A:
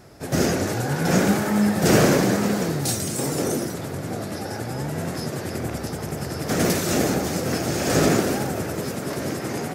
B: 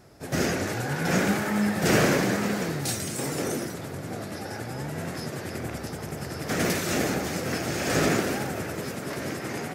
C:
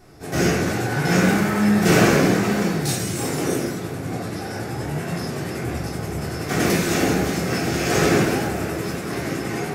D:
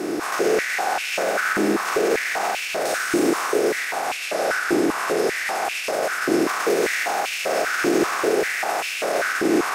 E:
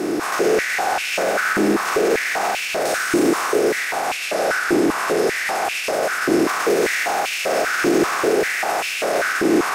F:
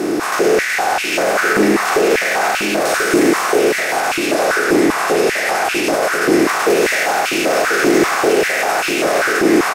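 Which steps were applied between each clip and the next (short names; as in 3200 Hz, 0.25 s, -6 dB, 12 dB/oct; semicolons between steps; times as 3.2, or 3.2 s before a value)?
dynamic EQ 2100 Hz, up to +6 dB, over -41 dBFS, Q 0.87; gain -5.5 dB
shoebox room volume 510 m³, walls furnished, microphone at 3.5 m
per-bin compression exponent 0.4; limiter -9 dBFS, peak gain reduction 9 dB; stepped high-pass 5.1 Hz 320–2600 Hz; gain -5.5 dB
low shelf 210 Hz +4.5 dB; in parallel at -6 dB: soft clip -23.5 dBFS, distortion -8 dB
echo 1.039 s -7.5 dB; gain +4 dB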